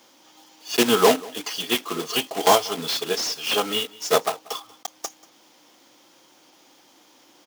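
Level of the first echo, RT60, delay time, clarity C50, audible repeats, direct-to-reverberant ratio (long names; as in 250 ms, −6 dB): −22.5 dB, no reverb audible, 186 ms, no reverb audible, 1, no reverb audible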